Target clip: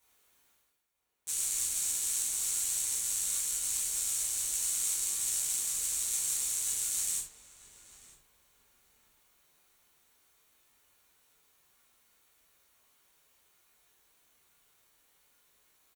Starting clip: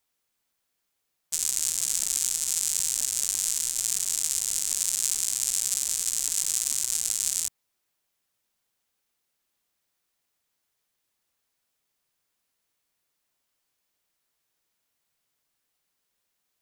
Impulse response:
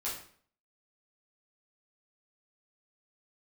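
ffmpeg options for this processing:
-filter_complex "[0:a]equalizer=f=4.8k:w=8:g=-10.5,areverse,acompressor=mode=upward:threshold=-49dB:ratio=2.5,areverse,asplit=2[a][b];[b]adelay=982,lowpass=f=1.5k:p=1,volume=-10.5dB,asplit=2[c][d];[d]adelay=982,lowpass=f=1.5k:p=1,volume=0.33,asplit=2[e][f];[f]adelay=982,lowpass=f=1.5k:p=1,volume=0.33,asplit=2[g][h];[h]adelay=982,lowpass=f=1.5k:p=1,volume=0.33[i];[a][c][e][g][i]amix=inputs=5:normalize=0[j];[1:a]atrim=start_sample=2205,afade=t=out:st=0.16:d=0.01,atrim=end_sample=7497[k];[j][k]afir=irnorm=-1:irlink=0,asetrate=45938,aresample=44100,volume=-6.5dB"

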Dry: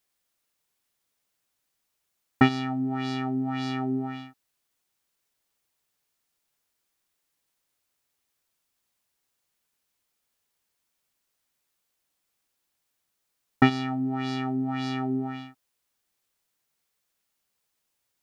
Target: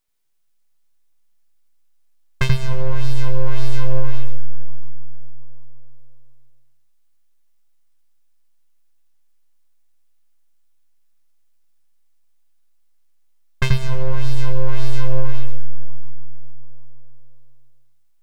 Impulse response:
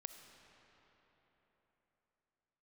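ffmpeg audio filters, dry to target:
-filter_complex "[0:a]aeval=exprs='abs(val(0))':c=same,asplit=2[a][b];[b]bass=f=250:g=12,treble=f=4k:g=3[c];[1:a]atrim=start_sample=2205,adelay=84[d];[c][d]afir=irnorm=-1:irlink=0,volume=-2dB[e];[a][e]amix=inputs=2:normalize=0,volume=2dB"

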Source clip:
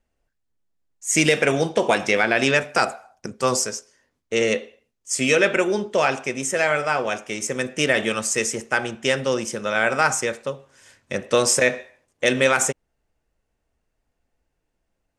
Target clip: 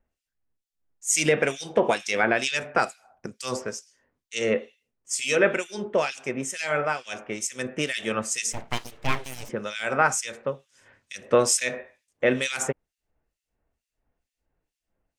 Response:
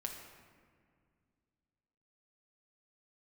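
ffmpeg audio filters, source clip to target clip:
-filter_complex "[0:a]acrossover=split=2400[a][b];[a]aeval=exprs='val(0)*(1-1/2+1/2*cos(2*PI*2.2*n/s))':c=same[c];[b]aeval=exprs='val(0)*(1-1/2-1/2*cos(2*PI*2.2*n/s))':c=same[d];[c][d]amix=inputs=2:normalize=0,asplit=3[e][f][g];[e]afade=t=out:st=8.52:d=0.02[h];[f]aeval=exprs='abs(val(0))':c=same,afade=t=in:st=8.52:d=0.02,afade=t=out:st=9.48:d=0.02[i];[g]afade=t=in:st=9.48:d=0.02[j];[h][i][j]amix=inputs=3:normalize=0"

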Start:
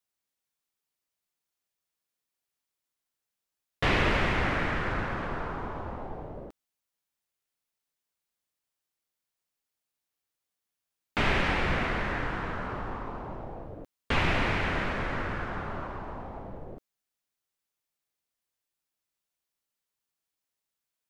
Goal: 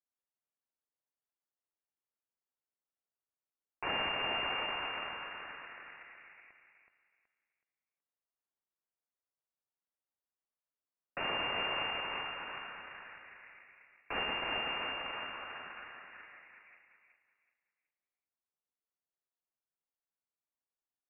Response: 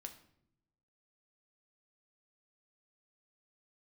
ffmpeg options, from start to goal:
-filter_complex "[0:a]aeval=exprs='if(lt(val(0),0),0.447*val(0),val(0))':c=same,aderivative,aeval=exprs='0.0422*(cos(1*acos(clip(val(0)/0.0422,-1,1)))-cos(1*PI/2))+0.00944*(cos(8*acos(clip(val(0)/0.0422,-1,1)))-cos(8*PI/2))':c=same,lowpass=f=2.4k:t=q:w=0.5098,lowpass=f=2.4k:t=q:w=0.6013,lowpass=f=2.4k:t=q:w=0.9,lowpass=f=2.4k:t=q:w=2.563,afreqshift=-2800,asplit=2[a][b];[b]aecho=0:1:374|748|1122|1496:0.501|0.14|0.0393|0.011[c];[a][c]amix=inputs=2:normalize=0,volume=6dB"

